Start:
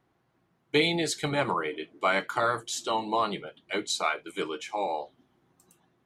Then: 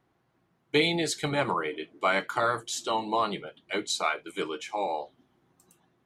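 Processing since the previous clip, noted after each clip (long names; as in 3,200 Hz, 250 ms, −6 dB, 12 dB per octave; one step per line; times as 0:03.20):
no processing that can be heard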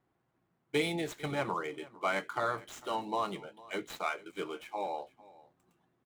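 running median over 9 samples
single-tap delay 452 ms −21 dB
level −6 dB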